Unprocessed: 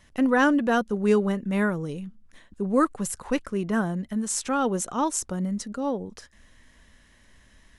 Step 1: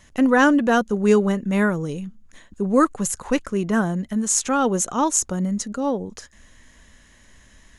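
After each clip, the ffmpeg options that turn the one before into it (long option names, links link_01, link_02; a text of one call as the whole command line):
ffmpeg -i in.wav -af "equalizer=frequency=6700:width=7.6:gain=10.5,volume=4.5dB" out.wav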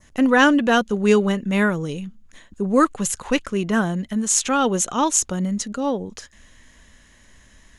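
ffmpeg -i in.wav -af "adynamicequalizer=threshold=0.00794:dfrequency=3100:dqfactor=1.1:tfrequency=3100:tqfactor=1.1:attack=5:release=100:ratio=0.375:range=4:mode=boostabove:tftype=bell" out.wav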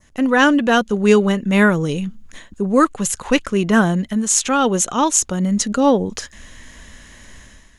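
ffmpeg -i in.wav -af "dynaudnorm=framelen=100:gausssize=7:maxgain=11dB,volume=-1dB" out.wav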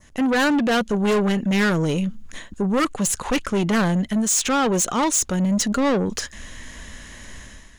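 ffmpeg -i in.wav -af "asoftclip=type=tanh:threshold=-19dB,volume=2.5dB" out.wav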